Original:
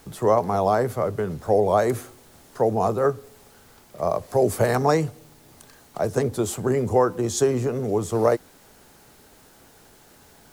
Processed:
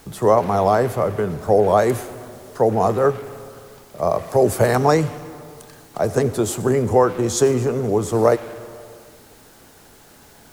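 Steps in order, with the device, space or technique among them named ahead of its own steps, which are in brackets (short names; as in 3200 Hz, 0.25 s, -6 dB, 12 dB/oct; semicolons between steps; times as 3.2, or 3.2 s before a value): saturated reverb return (on a send at -9.5 dB: reverb RT60 1.6 s, pre-delay 74 ms + soft clip -26 dBFS, distortion -7 dB); on the sum: gain +4 dB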